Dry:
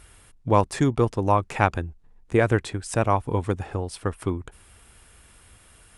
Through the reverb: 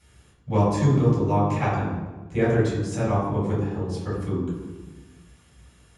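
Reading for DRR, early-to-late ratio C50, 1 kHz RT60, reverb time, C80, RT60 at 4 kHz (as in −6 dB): −8.0 dB, 1.0 dB, 1.2 s, 1.3 s, 4.0 dB, 0.85 s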